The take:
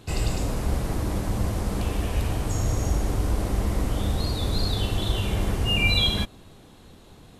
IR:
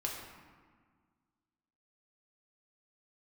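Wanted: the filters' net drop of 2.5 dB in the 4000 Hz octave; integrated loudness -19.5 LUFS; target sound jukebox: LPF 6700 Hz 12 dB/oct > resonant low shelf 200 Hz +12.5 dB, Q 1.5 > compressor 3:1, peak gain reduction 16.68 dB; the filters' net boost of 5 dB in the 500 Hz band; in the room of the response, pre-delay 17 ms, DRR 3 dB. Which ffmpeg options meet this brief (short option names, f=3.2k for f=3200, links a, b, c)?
-filter_complex "[0:a]equalizer=f=500:t=o:g=8.5,equalizer=f=4k:t=o:g=-3,asplit=2[a][b];[1:a]atrim=start_sample=2205,adelay=17[c];[b][c]afir=irnorm=-1:irlink=0,volume=-5.5dB[d];[a][d]amix=inputs=2:normalize=0,lowpass=6.7k,lowshelf=f=200:t=q:w=1.5:g=12.5,acompressor=threshold=-24dB:ratio=3,volume=5.5dB"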